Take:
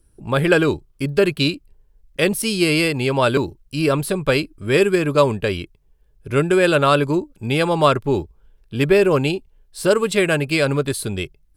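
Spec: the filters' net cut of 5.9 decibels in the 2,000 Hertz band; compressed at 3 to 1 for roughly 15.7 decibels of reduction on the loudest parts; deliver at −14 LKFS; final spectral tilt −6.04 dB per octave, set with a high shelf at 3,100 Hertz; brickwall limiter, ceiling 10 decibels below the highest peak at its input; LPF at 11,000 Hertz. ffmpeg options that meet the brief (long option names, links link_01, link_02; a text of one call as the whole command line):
ffmpeg -i in.wav -af "lowpass=11000,equalizer=frequency=2000:width_type=o:gain=-6,highshelf=frequency=3100:gain=-5.5,acompressor=threshold=-33dB:ratio=3,volume=22.5dB,alimiter=limit=-4.5dB:level=0:latency=1" out.wav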